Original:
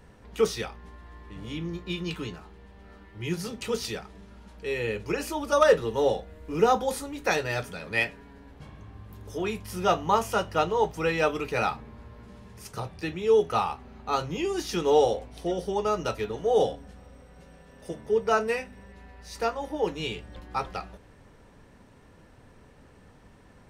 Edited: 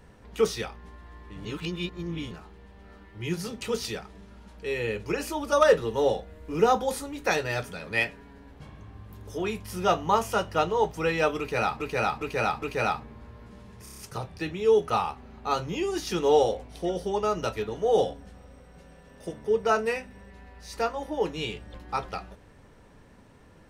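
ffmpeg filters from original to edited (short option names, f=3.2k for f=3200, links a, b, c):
-filter_complex "[0:a]asplit=11[a][b][c][d][e][f][g][h][i][j][k];[a]atrim=end=1.452[l];[b]atrim=start=1.448:end=2.312,asetpts=PTS-STARTPTS,areverse[m];[c]atrim=start=2.308:end=11.802[n];[d]atrim=start=11.388:end=11.802[o];[e]atrim=start=11.388:end=11.802[p];[f]atrim=start=11.388:end=12.632[q];[g]atrim=start=12.598:end=12.632[r];[h]atrim=start=12.598:end=12.632[s];[i]atrim=start=12.598:end=12.632[t];[j]atrim=start=12.598:end=12.632[u];[k]atrim=start=12.598[v];[l][m]acrossfade=d=0.004:c1=hsin:c2=hsin[w];[w][n]acrossfade=d=0.004:c1=hsin:c2=hsin[x];[x][o]acrossfade=d=0.004:c1=hsin:c2=hsin[y];[y][p]acrossfade=d=0.004:c1=hsin:c2=hsin[z];[z][q]acrossfade=d=0.004:c1=hsin:c2=hsin[aa];[aa][r]acrossfade=d=0.004:c1=hsin:c2=hsin[ab];[ab][s]acrossfade=d=0.004:c1=hsin:c2=hsin[ac];[ac][t]acrossfade=d=0.004:c1=hsin:c2=hsin[ad];[ad][u]acrossfade=d=0.004:c1=hsin:c2=hsin[ae];[ae][v]acrossfade=d=0.004:c1=hsin:c2=hsin"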